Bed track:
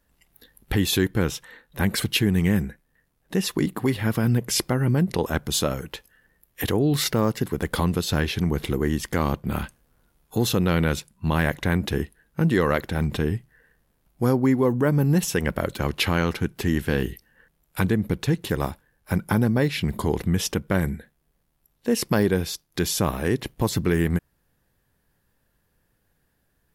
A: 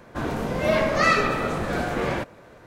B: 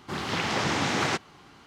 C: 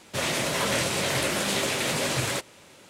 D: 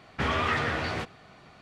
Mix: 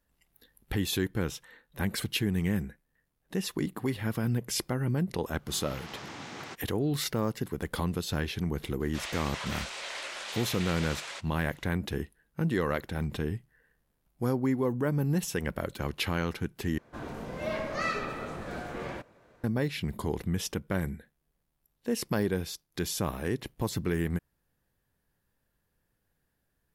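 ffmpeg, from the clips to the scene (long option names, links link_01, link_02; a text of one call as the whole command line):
ffmpeg -i bed.wav -i cue0.wav -i cue1.wav -i cue2.wav -filter_complex "[0:a]volume=-8dB[link_01];[3:a]highpass=800,lowpass=6100[link_02];[link_01]asplit=2[link_03][link_04];[link_03]atrim=end=16.784[link_05];[1:a]atrim=end=2.66,asetpts=PTS-STARTPTS,volume=-12dB[link_06];[link_04]atrim=start=19.436[link_07];[2:a]atrim=end=1.66,asetpts=PTS-STARTPTS,volume=-16dB,afade=type=in:duration=0.004:curve=hsin,afade=type=out:start_time=1.656:duration=0.004:curve=hsin,adelay=5380[link_08];[link_02]atrim=end=2.89,asetpts=PTS-STARTPTS,volume=-9.5dB,afade=type=in:duration=0.004:curve=hsin,afade=type=out:start_time=2.886:duration=0.004:curve=hsin,adelay=8800[link_09];[link_05][link_06]acrossfade=duration=0.004:curve1=hsin:curve2=hsin[link_10];[link_10][link_07]acrossfade=duration=0.004:curve1=hsin:curve2=hsin[link_11];[link_11][link_08][link_09]amix=inputs=3:normalize=0" out.wav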